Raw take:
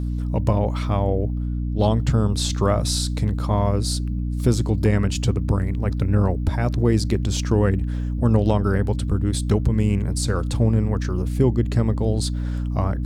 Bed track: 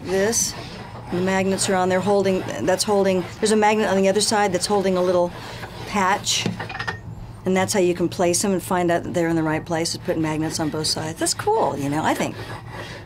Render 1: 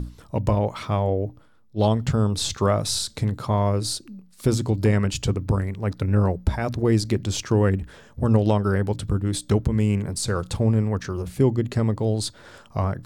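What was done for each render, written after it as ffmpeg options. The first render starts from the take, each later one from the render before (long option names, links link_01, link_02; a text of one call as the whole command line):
ffmpeg -i in.wav -af "bandreject=frequency=60:width_type=h:width=6,bandreject=frequency=120:width_type=h:width=6,bandreject=frequency=180:width_type=h:width=6,bandreject=frequency=240:width_type=h:width=6,bandreject=frequency=300:width_type=h:width=6" out.wav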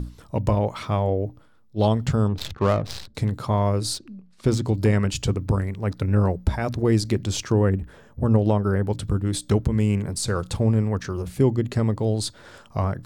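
ffmpeg -i in.wav -filter_complex "[0:a]asettb=1/sr,asplit=3[link_01][link_02][link_03];[link_01]atrim=end=2.284[link_04];[link_02]atrim=start=2.28:end=3.15,asetpts=PTS-STARTPTS,afade=type=in:duration=0.004:curve=qsin,afade=type=out:start_time=0.866:duration=0.004:curve=qsin,adynamicsmooth=sensitivity=2.5:basefreq=600[link_05];[link_03]atrim=start=3.146[link_06];[link_04][link_05]acrossfade=duration=0.004:curve1=hsin:curve2=qsin[link_07];[link_07][link_06]acrossfade=duration=0.004:curve1=qsin:curve2=hsin,asettb=1/sr,asplit=3[link_08][link_09][link_10];[link_08]atrim=end=3.944[link_11];[link_09]atrim=start=3.94:end=4.65,asetpts=PTS-STARTPTS,afade=type=in:duration=0.004:curve=qsin,afade=type=out:start_time=0.706:duration=0.004:curve=qsin,adynamicsmooth=sensitivity=7.5:basefreq=4100[link_12];[link_10]atrim=start=4.646[link_13];[link_11][link_12]acrossfade=duration=0.004:curve1=hsin:curve2=qsin[link_14];[link_14][link_13]acrossfade=duration=0.004:curve1=qsin:curve2=hsin,asettb=1/sr,asplit=3[link_15][link_16][link_17];[link_15]atrim=end=7.524[link_18];[link_16]atrim=start=7.52:end=8.9,asetpts=PTS-STARTPTS,afade=type=in:duration=0.004:curve=qsin,afade=type=out:start_time=1.376:duration=0.004:curve=qsin,equalizer=frequency=4900:width=0.44:gain=-8[link_19];[link_17]atrim=start=8.896[link_20];[link_18][link_19]acrossfade=duration=0.004:curve1=hsin:curve2=qsin[link_21];[link_21][link_20]acrossfade=duration=0.004:curve1=qsin:curve2=hsin" out.wav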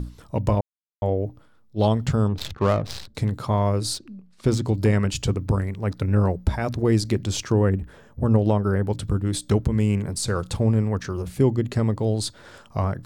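ffmpeg -i in.wav -filter_complex "[0:a]asplit=3[link_01][link_02][link_03];[link_01]atrim=end=0.61,asetpts=PTS-STARTPTS,afade=type=out:start_time=0.606:duration=0.004:curve=hsin[link_04];[link_02]atrim=start=0.61:end=1.02,asetpts=PTS-STARTPTS,volume=0[link_05];[link_03]atrim=start=1.02,asetpts=PTS-STARTPTS,afade=type=in:duration=0.004:curve=hsin[link_06];[link_04][link_05][link_06]concat=n=3:v=0:a=1" out.wav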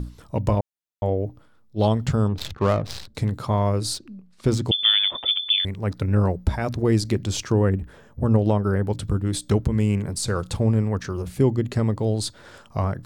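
ffmpeg -i in.wav -filter_complex "[0:a]asettb=1/sr,asplit=3[link_01][link_02][link_03];[link_01]atrim=end=4.714[link_04];[link_02]atrim=start=4.71:end=5.65,asetpts=PTS-STARTPTS,afade=type=in:duration=0.004:curve=qsin,afade=type=out:start_time=0.936:duration=0.004:curve=qsin,lowpass=frequency=3100:width_type=q:width=0.5098,lowpass=frequency=3100:width_type=q:width=0.6013,lowpass=frequency=3100:width_type=q:width=0.9,lowpass=frequency=3100:width_type=q:width=2.563,afreqshift=-3600[link_05];[link_03]atrim=start=5.646[link_06];[link_04][link_05]acrossfade=duration=0.004:curve1=hsin:curve2=qsin[link_07];[link_07][link_06]acrossfade=duration=0.004:curve1=qsin:curve2=hsin" out.wav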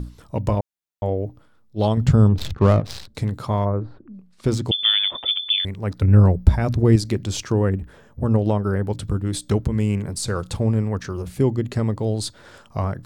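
ffmpeg -i in.wav -filter_complex "[0:a]asettb=1/sr,asplit=3[link_01][link_02][link_03];[link_01]atrim=end=1.974[link_04];[link_02]atrim=start=1.97:end=2.8,asetpts=PTS-STARTPTS,afade=type=in:duration=0.004:curve=qsin,afade=type=out:start_time=0.826:duration=0.004:curve=qsin,lowshelf=frequency=320:gain=9[link_05];[link_03]atrim=start=2.796[link_06];[link_04][link_05]acrossfade=duration=0.004:curve1=hsin:curve2=qsin[link_07];[link_07][link_06]acrossfade=duration=0.004:curve1=qsin:curve2=hsin,asplit=3[link_08][link_09][link_10];[link_08]afade=type=out:start_time=3.64:duration=0.02[link_11];[link_09]lowpass=frequency=1500:width=0.5412,lowpass=frequency=1500:width=1.3066,afade=type=in:start_time=3.64:duration=0.02,afade=type=out:start_time=4.13:duration=0.02[link_12];[link_10]afade=type=in:start_time=4.13:duration=0.02[link_13];[link_11][link_12][link_13]amix=inputs=3:normalize=0,asettb=1/sr,asplit=3[link_14][link_15][link_16];[link_14]atrim=end=6.024[link_17];[link_15]atrim=start=6.02:end=6.96,asetpts=PTS-STARTPTS,afade=type=in:duration=0.004:curve=qsin,afade=type=out:start_time=0.936:duration=0.004:curve=qsin,lowshelf=frequency=210:gain=10[link_18];[link_16]atrim=start=6.956[link_19];[link_17][link_18]acrossfade=duration=0.004:curve1=hsin:curve2=qsin[link_20];[link_20][link_19]acrossfade=duration=0.004:curve1=qsin:curve2=hsin" out.wav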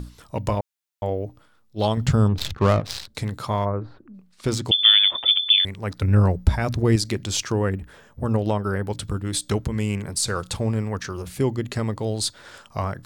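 ffmpeg -i in.wav -af "tiltshelf=frequency=780:gain=-4.5" out.wav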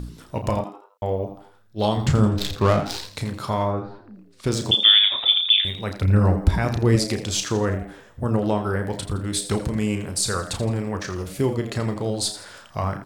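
ffmpeg -i in.wav -filter_complex "[0:a]asplit=2[link_01][link_02];[link_02]adelay=33,volume=-8dB[link_03];[link_01][link_03]amix=inputs=2:normalize=0,asplit=2[link_04][link_05];[link_05]asplit=4[link_06][link_07][link_08][link_09];[link_06]adelay=83,afreqshift=100,volume=-12dB[link_10];[link_07]adelay=166,afreqshift=200,volume=-20dB[link_11];[link_08]adelay=249,afreqshift=300,volume=-27.9dB[link_12];[link_09]adelay=332,afreqshift=400,volume=-35.9dB[link_13];[link_10][link_11][link_12][link_13]amix=inputs=4:normalize=0[link_14];[link_04][link_14]amix=inputs=2:normalize=0" out.wav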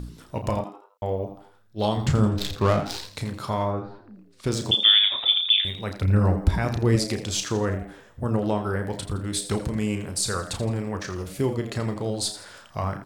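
ffmpeg -i in.wav -af "volume=-2.5dB" out.wav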